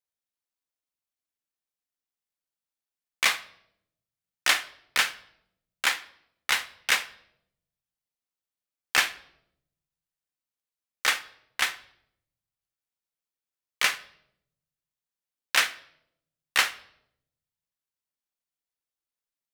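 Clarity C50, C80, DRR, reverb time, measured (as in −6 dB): 16.5 dB, 20.0 dB, 11.0 dB, 0.75 s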